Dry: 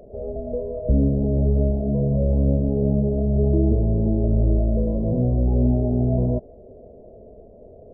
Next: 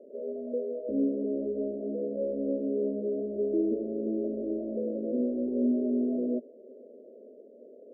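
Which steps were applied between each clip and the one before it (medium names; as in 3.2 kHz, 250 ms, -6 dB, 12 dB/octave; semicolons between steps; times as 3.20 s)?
elliptic band-pass 240–570 Hz, stop band 40 dB; trim -3 dB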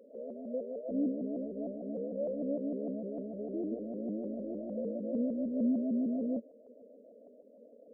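static phaser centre 570 Hz, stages 8; vibrato with a chosen wave saw up 6.6 Hz, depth 160 cents; trim -3 dB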